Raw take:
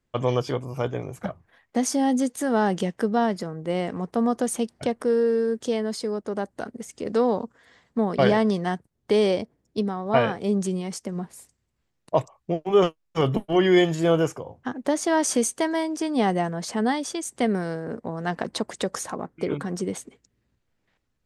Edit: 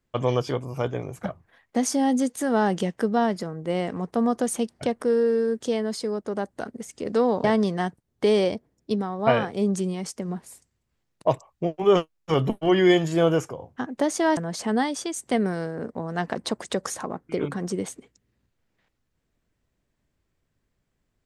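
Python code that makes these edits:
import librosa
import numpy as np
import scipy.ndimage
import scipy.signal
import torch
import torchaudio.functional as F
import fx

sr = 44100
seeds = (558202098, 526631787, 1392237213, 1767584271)

y = fx.edit(x, sr, fx.cut(start_s=7.44, length_s=0.87),
    fx.cut(start_s=15.24, length_s=1.22), tone=tone)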